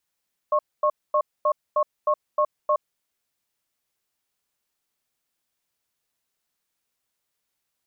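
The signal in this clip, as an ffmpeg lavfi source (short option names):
-f lavfi -i "aevalsrc='0.1*(sin(2*PI*602*t)+sin(2*PI*1090*t))*clip(min(mod(t,0.31),0.07-mod(t,0.31))/0.005,0,1)':d=2.38:s=44100"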